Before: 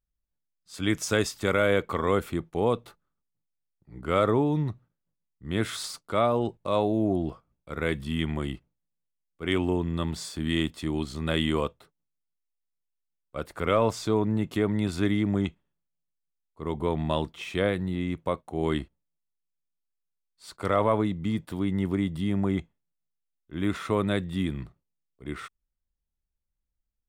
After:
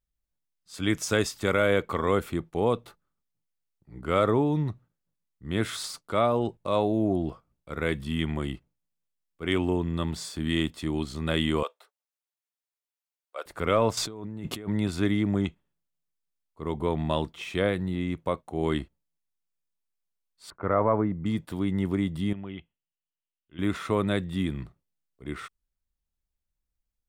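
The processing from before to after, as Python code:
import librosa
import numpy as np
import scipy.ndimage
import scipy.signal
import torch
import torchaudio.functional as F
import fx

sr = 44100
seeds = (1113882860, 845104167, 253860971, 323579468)

y = fx.highpass(x, sr, hz=520.0, slope=24, at=(11.63, 13.46))
y = fx.over_compress(y, sr, threshold_db=-36.0, ratio=-1.0, at=(13.97, 14.68))
y = fx.lowpass(y, sr, hz=1800.0, slope=24, at=(20.5, 21.26))
y = fx.ladder_lowpass(y, sr, hz=3100.0, resonance_pct=80, at=(22.33, 23.59))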